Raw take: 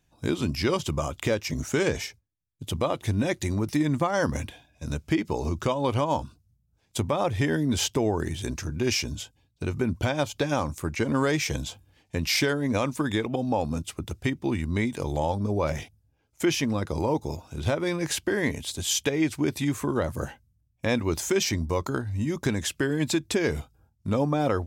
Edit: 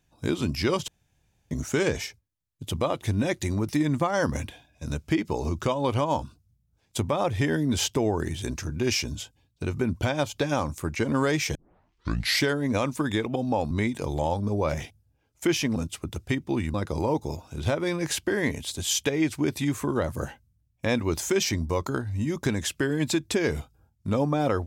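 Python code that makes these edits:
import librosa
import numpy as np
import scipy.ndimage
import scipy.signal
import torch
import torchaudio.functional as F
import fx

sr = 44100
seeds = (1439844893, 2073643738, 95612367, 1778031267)

y = fx.edit(x, sr, fx.room_tone_fill(start_s=0.88, length_s=0.63),
    fx.tape_start(start_s=11.55, length_s=0.88),
    fx.move(start_s=13.71, length_s=0.98, to_s=16.74), tone=tone)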